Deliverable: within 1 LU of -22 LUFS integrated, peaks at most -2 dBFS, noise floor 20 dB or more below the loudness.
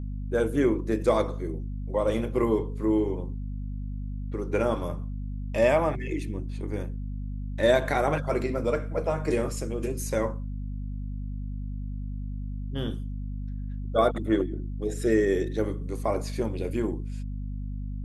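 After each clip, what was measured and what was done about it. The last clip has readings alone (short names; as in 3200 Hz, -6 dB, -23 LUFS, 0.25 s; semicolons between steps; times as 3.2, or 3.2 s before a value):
hum 50 Hz; harmonics up to 250 Hz; hum level -31 dBFS; loudness -29.0 LUFS; peak -10.0 dBFS; loudness target -22.0 LUFS
-> de-hum 50 Hz, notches 5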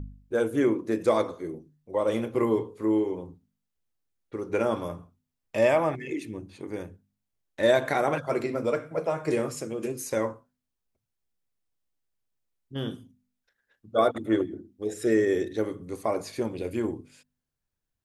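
hum none; loudness -28.0 LUFS; peak -10.5 dBFS; loudness target -22.0 LUFS
-> gain +6 dB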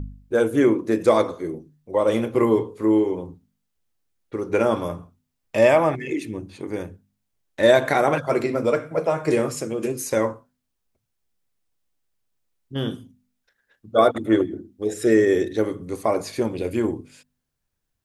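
loudness -22.0 LUFS; peak -4.5 dBFS; noise floor -77 dBFS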